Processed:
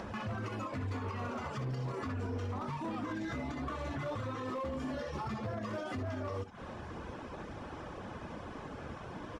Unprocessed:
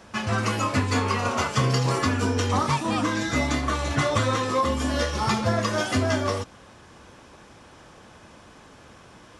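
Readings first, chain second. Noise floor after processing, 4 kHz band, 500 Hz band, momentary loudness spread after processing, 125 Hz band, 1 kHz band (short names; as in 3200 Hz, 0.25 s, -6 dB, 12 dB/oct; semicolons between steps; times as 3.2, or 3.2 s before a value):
-46 dBFS, -21.0 dB, -13.0 dB, 7 LU, -13.0 dB, -14.5 dB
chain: compressor 10:1, threshold -37 dBFS, peak gain reduction 19 dB; early reflections 62 ms -7.5 dB, 75 ms -12 dB; limiter -32 dBFS, peak gain reduction 7 dB; upward compressor, threshold -46 dBFS; reverb removal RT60 0.56 s; LPF 1200 Hz 6 dB/oct; hard clip -39.5 dBFS, distortion -17 dB; gain +6.5 dB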